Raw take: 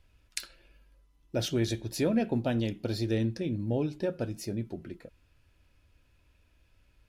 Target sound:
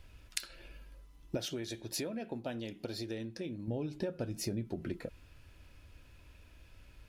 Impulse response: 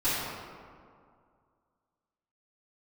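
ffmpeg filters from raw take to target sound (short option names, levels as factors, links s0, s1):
-filter_complex "[0:a]acompressor=threshold=0.00891:ratio=12,asettb=1/sr,asplit=3[s0][s1][s2];[s0]atrim=end=1.374[s3];[s1]atrim=start=1.37:end=3.68,asetpts=PTS-STARTPTS,afade=t=in:d=0.004:c=qsin,afade=t=out:st=2.306:d=0.004:c=qsin,lowshelf=f=190:g=-11.5[s4];[s2]atrim=start=3.676[s5];[s3][s4]acrossfade=d=0.004:c1=hsin:c2=qsin[s6];[s6][s5]acrossfade=d=0.004:c1=qsin:c2=hsin,volume=2.51"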